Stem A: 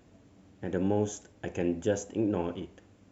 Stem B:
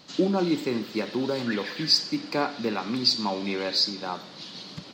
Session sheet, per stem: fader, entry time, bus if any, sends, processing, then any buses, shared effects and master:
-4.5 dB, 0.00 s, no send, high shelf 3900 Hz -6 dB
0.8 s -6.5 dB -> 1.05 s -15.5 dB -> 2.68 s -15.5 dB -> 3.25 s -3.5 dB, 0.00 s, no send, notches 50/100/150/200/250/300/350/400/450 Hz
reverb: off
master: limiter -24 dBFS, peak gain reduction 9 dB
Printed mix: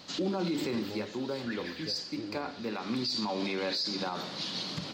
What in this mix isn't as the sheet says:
stem A -4.5 dB -> -13.5 dB; stem B -6.5 dB -> +2.0 dB

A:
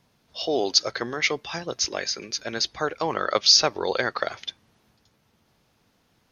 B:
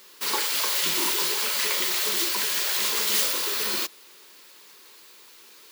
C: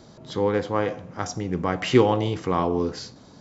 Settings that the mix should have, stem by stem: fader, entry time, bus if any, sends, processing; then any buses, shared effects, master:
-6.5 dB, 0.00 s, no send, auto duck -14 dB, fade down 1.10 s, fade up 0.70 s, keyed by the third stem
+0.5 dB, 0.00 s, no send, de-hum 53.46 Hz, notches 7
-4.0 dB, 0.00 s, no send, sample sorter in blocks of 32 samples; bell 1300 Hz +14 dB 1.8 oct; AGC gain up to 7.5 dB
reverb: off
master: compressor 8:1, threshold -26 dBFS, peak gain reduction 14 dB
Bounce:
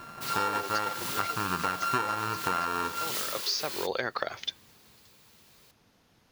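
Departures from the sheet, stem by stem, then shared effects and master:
stem A -6.5 dB -> +1.0 dB; stem B +0.5 dB -> -9.5 dB; stem C: missing AGC gain up to 7.5 dB

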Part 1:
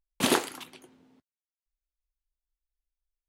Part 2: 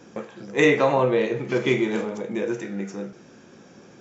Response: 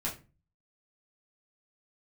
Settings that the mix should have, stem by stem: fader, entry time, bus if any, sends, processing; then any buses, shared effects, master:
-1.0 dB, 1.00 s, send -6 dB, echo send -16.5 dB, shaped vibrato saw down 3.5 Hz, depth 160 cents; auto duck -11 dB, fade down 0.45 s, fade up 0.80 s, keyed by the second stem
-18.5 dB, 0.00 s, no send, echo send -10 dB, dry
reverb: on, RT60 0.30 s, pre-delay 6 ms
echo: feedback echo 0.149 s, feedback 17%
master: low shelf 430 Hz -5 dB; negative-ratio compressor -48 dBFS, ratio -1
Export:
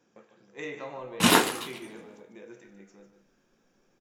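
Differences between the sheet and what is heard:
stem 1 -1.0 dB -> +7.0 dB; master: missing negative-ratio compressor -48 dBFS, ratio -1

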